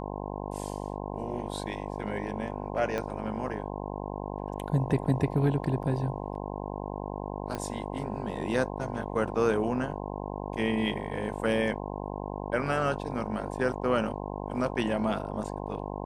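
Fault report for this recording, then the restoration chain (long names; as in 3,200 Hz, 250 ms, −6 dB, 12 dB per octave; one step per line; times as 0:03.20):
mains buzz 50 Hz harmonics 21 −36 dBFS
0:02.98: click −18 dBFS
0:07.55: click −20 dBFS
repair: click removal
hum removal 50 Hz, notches 21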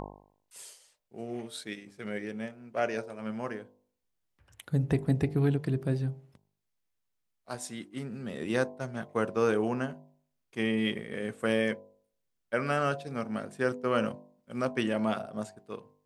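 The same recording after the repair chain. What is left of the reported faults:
0:02.98: click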